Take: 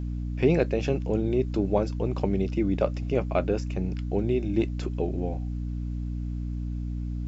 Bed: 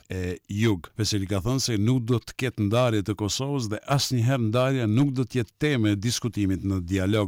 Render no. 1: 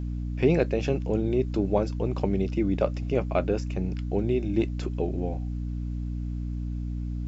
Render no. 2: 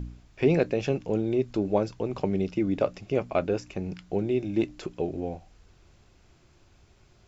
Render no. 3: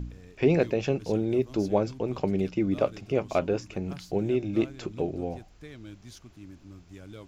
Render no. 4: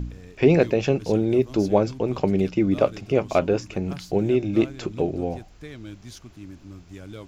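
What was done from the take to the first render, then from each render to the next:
no processing that can be heard
hum removal 60 Hz, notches 5
mix in bed −22 dB
level +5.5 dB

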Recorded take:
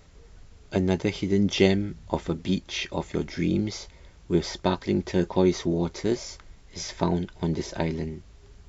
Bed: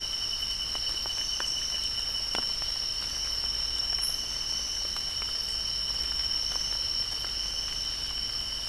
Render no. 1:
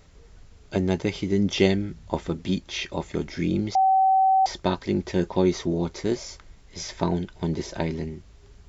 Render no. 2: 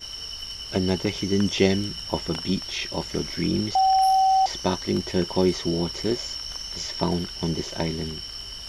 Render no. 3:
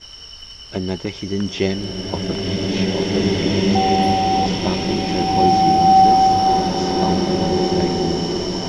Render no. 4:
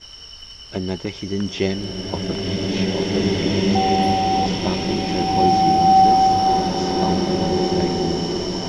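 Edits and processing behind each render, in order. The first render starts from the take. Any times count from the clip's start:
0:03.75–0:04.46: beep over 765 Hz −15.5 dBFS
mix in bed −4 dB
high-frequency loss of the air 61 metres; slow-attack reverb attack 2,320 ms, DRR −6 dB
level −1.5 dB

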